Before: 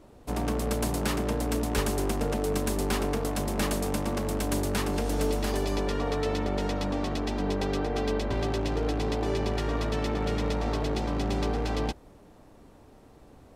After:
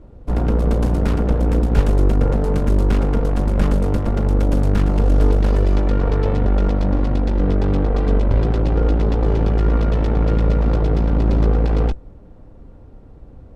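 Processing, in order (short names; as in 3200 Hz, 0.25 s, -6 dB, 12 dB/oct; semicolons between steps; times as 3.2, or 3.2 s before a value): added harmonics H 6 -13 dB, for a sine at -14 dBFS; RIAA curve playback; small resonant body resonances 510/1400 Hz, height 9 dB, ringing for 90 ms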